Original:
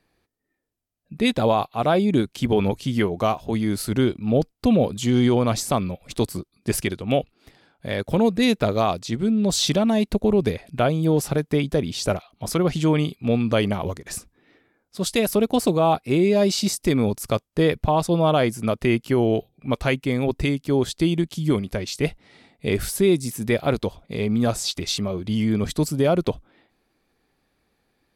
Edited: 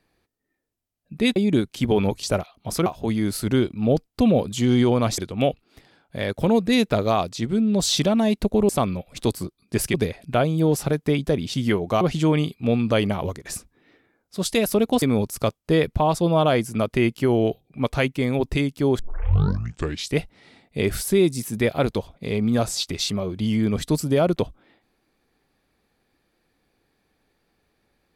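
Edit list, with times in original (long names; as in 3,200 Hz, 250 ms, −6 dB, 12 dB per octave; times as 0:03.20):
0:01.36–0:01.97: remove
0:02.84–0:03.31: swap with 0:11.99–0:12.62
0:05.63–0:06.88: move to 0:10.39
0:15.63–0:16.90: remove
0:20.87: tape start 1.15 s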